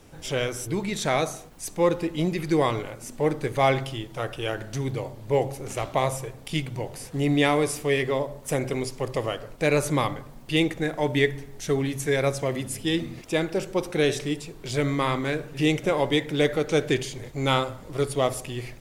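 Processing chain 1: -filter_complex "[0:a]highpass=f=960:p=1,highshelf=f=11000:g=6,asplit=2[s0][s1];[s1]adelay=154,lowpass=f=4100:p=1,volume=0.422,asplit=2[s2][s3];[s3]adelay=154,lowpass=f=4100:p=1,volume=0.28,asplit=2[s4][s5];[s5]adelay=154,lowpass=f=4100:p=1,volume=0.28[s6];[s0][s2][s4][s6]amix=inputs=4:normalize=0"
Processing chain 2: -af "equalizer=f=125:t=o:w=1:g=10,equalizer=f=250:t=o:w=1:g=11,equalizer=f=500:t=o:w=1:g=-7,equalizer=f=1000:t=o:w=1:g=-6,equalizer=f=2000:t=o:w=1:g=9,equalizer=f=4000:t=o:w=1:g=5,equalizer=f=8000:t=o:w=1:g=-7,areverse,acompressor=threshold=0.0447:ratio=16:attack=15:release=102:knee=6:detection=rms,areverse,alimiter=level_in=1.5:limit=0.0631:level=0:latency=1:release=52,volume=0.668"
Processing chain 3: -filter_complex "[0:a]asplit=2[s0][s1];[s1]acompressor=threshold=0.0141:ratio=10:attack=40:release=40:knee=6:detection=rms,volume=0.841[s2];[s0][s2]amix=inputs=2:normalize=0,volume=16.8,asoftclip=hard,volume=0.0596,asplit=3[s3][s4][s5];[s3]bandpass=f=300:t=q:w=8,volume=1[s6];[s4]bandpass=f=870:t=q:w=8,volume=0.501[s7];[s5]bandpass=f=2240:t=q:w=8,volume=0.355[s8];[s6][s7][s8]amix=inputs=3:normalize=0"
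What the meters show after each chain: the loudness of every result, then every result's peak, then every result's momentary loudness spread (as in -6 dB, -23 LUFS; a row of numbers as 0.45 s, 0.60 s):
-30.5 LUFS, -36.0 LUFS, -39.0 LUFS; -9.0 dBFS, -27.5 dBFS, -23.5 dBFS; 8 LU, 2 LU, 11 LU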